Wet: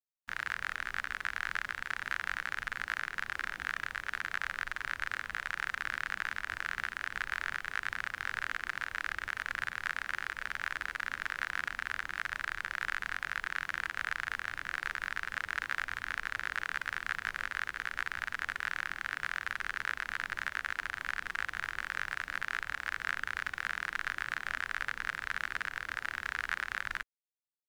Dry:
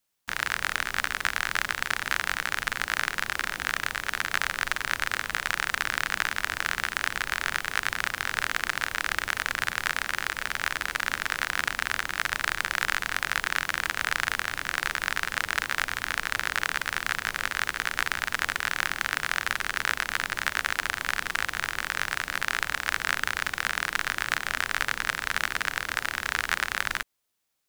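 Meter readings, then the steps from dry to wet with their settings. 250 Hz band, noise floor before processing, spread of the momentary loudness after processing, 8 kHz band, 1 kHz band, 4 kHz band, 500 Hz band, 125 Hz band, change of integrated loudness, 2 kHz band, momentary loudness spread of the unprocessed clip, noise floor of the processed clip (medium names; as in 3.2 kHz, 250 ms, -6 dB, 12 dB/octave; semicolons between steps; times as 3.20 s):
-12.5 dB, -44 dBFS, 2 LU, -17.0 dB, -8.5 dB, -13.0 dB, -13.0 dB, -10.5 dB, -8.0 dB, -7.0 dB, 2 LU, -56 dBFS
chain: peak limiter -8.5 dBFS, peak gain reduction 4 dB; spectral contrast expander 1.5:1; trim -8 dB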